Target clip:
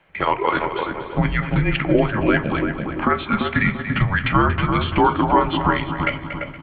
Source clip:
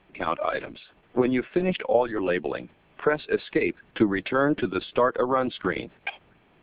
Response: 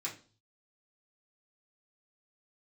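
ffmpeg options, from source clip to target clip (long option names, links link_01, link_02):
-filter_complex "[0:a]asplit=2[link_01][link_02];[link_02]adelay=341,lowpass=frequency=910:poles=1,volume=-3dB,asplit=2[link_03][link_04];[link_04]adelay=341,lowpass=frequency=910:poles=1,volume=0.43,asplit=2[link_05][link_06];[link_06]adelay=341,lowpass=frequency=910:poles=1,volume=0.43,asplit=2[link_07][link_08];[link_08]adelay=341,lowpass=frequency=910:poles=1,volume=0.43,asplit=2[link_09][link_10];[link_10]adelay=341,lowpass=frequency=910:poles=1,volume=0.43,asplit=2[link_11][link_12];[link_12]adelay=341,lowpass=frequency=910:poles=1,volume=0.43[link_13];[link_01][link_03][link_05][link_07][link_09][link_11][link_13]amix=inputs=7:normalize=0,agate=range=-7dB:threshold=-49dB:ratio=16:detection=peak,asplit=2[link_14][link_15];[1:a]atrim=start_sample=2205,lowpass=2700[link_16];[link_15][link_16]afir=irnorm=-1:irlink=0,volume=-5.5dB[link_17];[link_14][link_17]amix=inputs=2:normalize=0,afreqshift=-210,lowshelf=frequency=350:gain=-9.5,aecho=1:1:234|468|702|936:0.224|0.0806|0.029|0.0104,asplit=2[link_18][link_19];[link_19]acompressor=threshold=-32dB:ratio=6,volume=-2dB[link_20];[link_18][link_20]amix=inputs=2:normalize=0,volume=5.5dB"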